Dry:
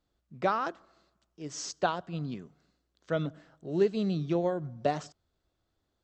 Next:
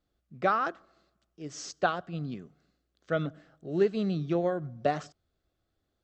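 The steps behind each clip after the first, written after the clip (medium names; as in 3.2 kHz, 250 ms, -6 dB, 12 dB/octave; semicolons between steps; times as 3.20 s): treble shelf 4.8 kHz -5 dB; band-stop 950 Hz, Q 5; dynamic bell 1.4 kHz, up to +5 dB, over -43 dBFS, Q 0.86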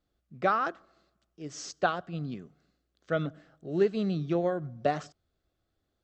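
no audible change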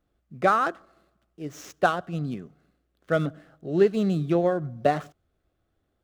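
median filter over 9 samples; trim +5.5 dB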